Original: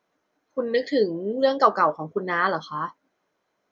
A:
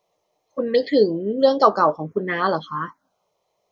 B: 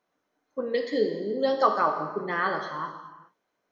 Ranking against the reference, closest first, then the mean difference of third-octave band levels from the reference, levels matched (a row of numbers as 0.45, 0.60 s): A, B; 2.0, 4.0 dB